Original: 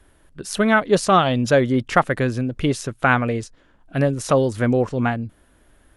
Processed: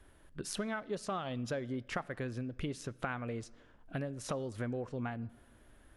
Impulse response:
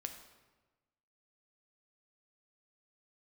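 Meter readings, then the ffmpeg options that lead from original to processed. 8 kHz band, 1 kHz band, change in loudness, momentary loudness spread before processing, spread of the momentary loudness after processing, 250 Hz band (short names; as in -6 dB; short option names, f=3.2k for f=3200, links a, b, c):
-15.0 dB, -21.5 dB, -19.5 dB, 12 LU, 6 LU, -18.5 dB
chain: -filter_complex "[0:a]acompressor=threshold=-30dB:ratio=6,asplit=2[a][b];[1:a]atrim=start_sample=2205,lowpass=5.8k[c];[b][c]afir=irnorm=-1:irlink=0,volume=-9dB[d];[a][d]amix=inputs=2:normalize=0,volume=-7.5dB"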